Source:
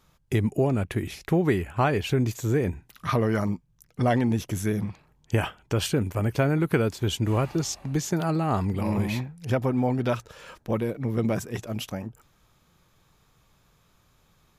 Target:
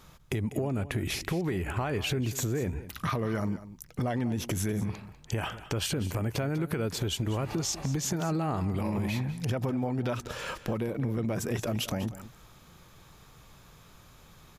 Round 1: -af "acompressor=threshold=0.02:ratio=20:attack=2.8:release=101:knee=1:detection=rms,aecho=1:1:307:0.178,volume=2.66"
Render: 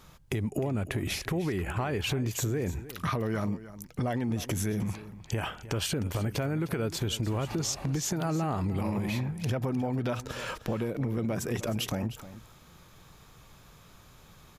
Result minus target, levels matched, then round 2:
echo 111 ms late
-af "acompressor=threshold=0.02:ratio=20:attack=2.8:release=101:knee=1:detection=rms,aecho=1:1:196:0.178,volume=2.66"

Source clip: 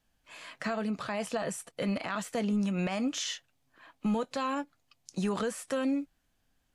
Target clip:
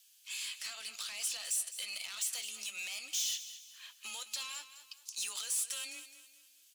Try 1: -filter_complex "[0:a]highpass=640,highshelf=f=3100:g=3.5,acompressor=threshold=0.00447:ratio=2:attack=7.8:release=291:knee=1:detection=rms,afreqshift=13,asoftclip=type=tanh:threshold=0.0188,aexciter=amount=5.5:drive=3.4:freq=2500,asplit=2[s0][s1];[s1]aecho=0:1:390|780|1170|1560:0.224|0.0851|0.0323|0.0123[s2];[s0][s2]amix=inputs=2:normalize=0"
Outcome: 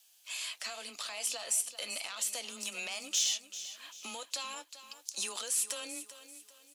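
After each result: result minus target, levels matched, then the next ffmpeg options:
echo 180 ms late; 500 Hz band +12.0 dB; saturation: distortion -12 dB
-filter_complex "[0:a]highpass=640,highshelf=f=3100:g=3.5,acompressor=threshold=0.00447:ratio=2:attack=7.8:release=291:knee=1:detection=rms,afreqshift=13,asoftclip=type=tanh:threshold=0.0188,aexciter=amount=5.5:drive=3.4:freq=2500,asplit=2[s0][s1];[s1]aecho=0:1:210|420|630|840:0.224|0.0851|0.0323|0.0123[s2];[s0][s2]amix=inputs=2:normalize=0"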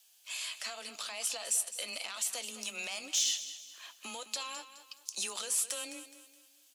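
500 Hz band +11.5 dB; saturation: distortion -12 dB
-filter_complex "[0:a]highpass=1700,highshelf=f=3100:g=3.5,acompressor=threshold=0.00447:ratio=2:attack=7.8:release=291:knee=1:detection=rms,afreqshift=13,asoftclip=type=tanh:threshold=0.0188,aexciter=amount=5.5:drive=3.4:freq=2500,asplit=2[s0][s1];[s1]aecho=0:1:210|420|630|840:0.224|0.0851|0.0323|0.0123[s2];[s0][s2]amix=inputs=2:normalize=0"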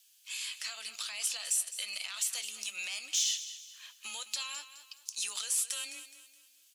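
saturation: distortion -12 dB
-filter_complex "[0:a]highpass=1700,highshelf=f=3100:g=3.5,acompressor=threshold=0.00447:ratio=2:attack=7.8:release=291:knee=1:detection=rms,afreqshift=13,asoftclip=type=tanh:threshold=0.00531,aexciter=amount=5.5:drive=3.4:freq=2500,asplit=2[s0][s1];[s1]aecho=0:1:210|420|630|840:0.224|0.0851|0.0323|0.0123[s2];[s0][s2]amix=inputs=2:normalize=0"

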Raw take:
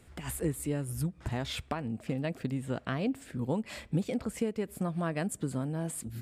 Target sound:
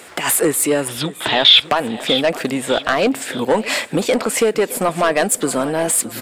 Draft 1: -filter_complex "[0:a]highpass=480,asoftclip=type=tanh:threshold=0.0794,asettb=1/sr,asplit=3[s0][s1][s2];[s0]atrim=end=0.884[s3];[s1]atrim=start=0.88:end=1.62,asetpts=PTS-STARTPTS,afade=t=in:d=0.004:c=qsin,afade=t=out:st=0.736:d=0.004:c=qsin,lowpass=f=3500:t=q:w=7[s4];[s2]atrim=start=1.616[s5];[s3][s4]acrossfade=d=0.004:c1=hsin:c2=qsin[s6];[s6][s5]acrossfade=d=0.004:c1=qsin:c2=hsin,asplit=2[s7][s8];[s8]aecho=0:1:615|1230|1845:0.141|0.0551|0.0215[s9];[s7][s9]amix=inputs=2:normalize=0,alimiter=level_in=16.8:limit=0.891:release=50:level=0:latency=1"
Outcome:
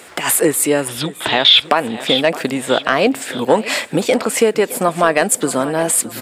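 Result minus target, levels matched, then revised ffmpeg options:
saturation: distortion -12 dB
-filter_complex "[0:a]highpass=480,asoftclip=type=tanh:threshold=0.0237,asettb=1/sr,asplit=3[s0][s1][s2];[s0]atrim=end=0.884[s3];[s1]atrim=start=0.88:end=1.62,asetpts=PTS-STARTPTS,afade=t=in:d=0.004:c=qsin,afade=t=out:st=0.736:d=0.004:c=qsin,lowpass=f=3500:t=q:w=7[s4];[s2]atrim=start=1.616[s5];[s3][s4]acrossfade=d=0.004:c1=hsin:c2=qsin[s6];[s6][s5]acrossfade=d=0.004:c1=qsin:c2=hsin,asplit=2[s7][s8];[s8]aecho=0:1:615|1230|1845:0.141|0.0551|0.0215[s9];[s7][s9]amix=inputs=2:normalize=0,alimiter=level_in=16.8:limit=0.891:release=50:level=0:latency=1"

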